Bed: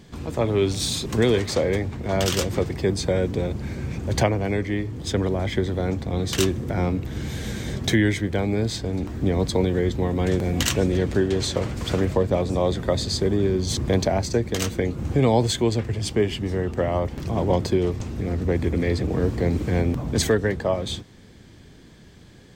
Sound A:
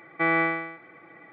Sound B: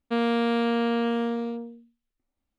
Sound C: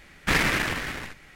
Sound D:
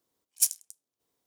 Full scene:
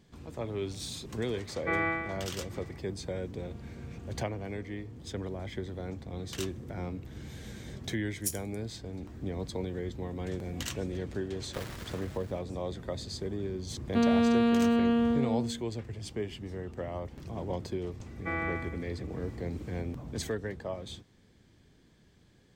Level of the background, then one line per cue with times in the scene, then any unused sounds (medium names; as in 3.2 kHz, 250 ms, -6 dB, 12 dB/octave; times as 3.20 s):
bed -14 dB
1.47 s: add A -7 dB
3.32 s: add B -15 dB + compression, threshold -39 dBFS
7.84 s: add D -4.5 dB + feedback comb 94 Hz, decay 0.32 s, harmonics odd, mix 50%
11.26 s: add C -17 dB + dead-time distortion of 0.24 ms
13.84 s: add B -4.5 dB + tone controls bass +11 dB, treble 0 dB
18.06 s: add A -11 dB